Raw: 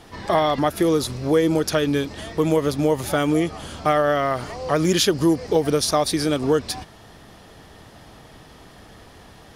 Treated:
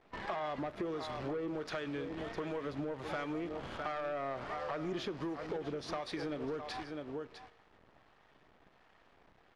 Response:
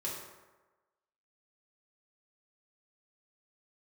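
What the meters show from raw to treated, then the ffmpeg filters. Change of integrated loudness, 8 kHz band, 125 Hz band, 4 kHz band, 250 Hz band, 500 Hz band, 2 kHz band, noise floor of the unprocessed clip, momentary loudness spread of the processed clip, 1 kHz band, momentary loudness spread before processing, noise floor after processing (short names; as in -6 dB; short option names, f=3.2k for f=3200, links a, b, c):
-18.5 dB, -30.0 dB, -20.5 dB, -20.5 dB, -18.5 dB, -18.0 dB, -14.5 dB, -47 dBFS, 4 LU, -16.0 dB, 6 LU, -66 dBFS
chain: -filter_complex "[0:a]equalizer=f=97:t=o:w=0.85:g=-4,acrossover=split=760[a][b];[a]aeval=exprs='val(0)*(1-0.5/2+0.5/2*cos(2*PI*1.4*n/s))':c=same[c];[b]aeval=exprs='val(0)*(1-0.5/2-0.5/2*cos(2*PI*1.4*n/s))':c=same[d];[c][d]amix=inputs=2:normalize=0,agate=range=-9dB:threshold=-45dB:ratio=16:detection=peak,acrusher=bits=7:dc=4:mix=0:aa=0.000001,aecho=1:1:656:0.211,alimiter=limit=-12.5dB:level=0:latency=1:release=226,lowpass=2.3k,lowshelf=f=410:g=-7,asoftclip=type=tanh:threshold=-22dB,acompressor=threshold=-35dB:ratio=6,asplit=2[e][f];[1:a]atrim=start_sample=2205[g];[f][g]afir=irnorm=-1:irlink=0,volume=-16.5dB[h];[e][h]amix=inputs=2:normalize=0,volume=-2dB"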